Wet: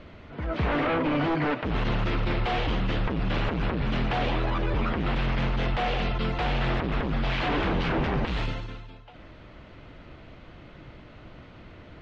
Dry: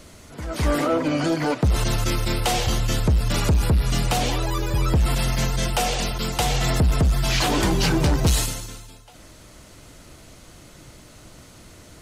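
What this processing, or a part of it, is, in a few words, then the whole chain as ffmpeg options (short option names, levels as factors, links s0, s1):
synthesiser wavefolder: -af "aeval=exprs='0.1*(abs(mod(val(0)/0.1+3,4)-2)-1)':c=same,lowpass=f=3100:w=0.5412,lowpass=f=3100:w=1.3066"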